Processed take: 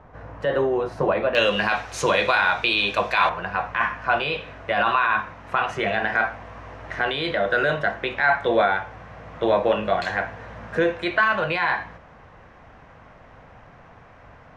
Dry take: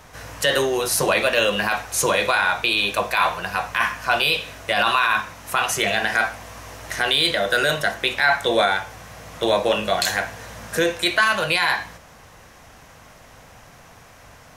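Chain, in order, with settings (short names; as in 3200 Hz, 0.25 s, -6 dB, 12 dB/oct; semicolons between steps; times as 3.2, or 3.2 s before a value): LPF 1100 Hz 12 dB/oct, from 1.35 s 4100 Hz, from 3.29 s 1900 Hz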